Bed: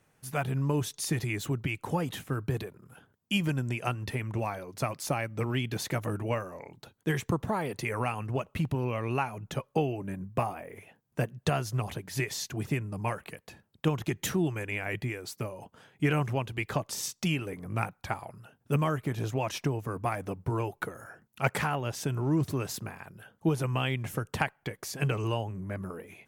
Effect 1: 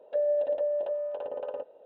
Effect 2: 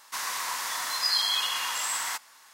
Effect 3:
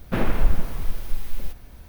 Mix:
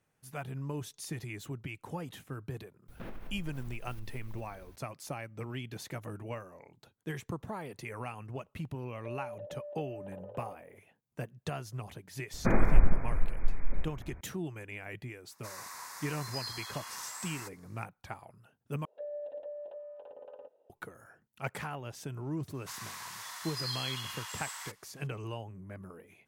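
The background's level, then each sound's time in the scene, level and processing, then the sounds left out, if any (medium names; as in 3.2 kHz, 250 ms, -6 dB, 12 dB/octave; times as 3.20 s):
bed -9.5 dB
2.88 s: add 3 -11 dB + compression 5:1, threshold -28 dBFS
8.92 s: add 1 -9.5 dB + compression 3:1, threshold -34 dBFS
12.33 s: add 3 -2.5 dB + brick-wall FIR low-pass 2.5 kHz
15.31 s: add 2 -12 dB + peaking EQ 3.1 kHz -14 dB 0.49 oct
18.85 s: replace with 1 -14 dB
22.54 s: add 2 -12 dB + high-pass 620 Hz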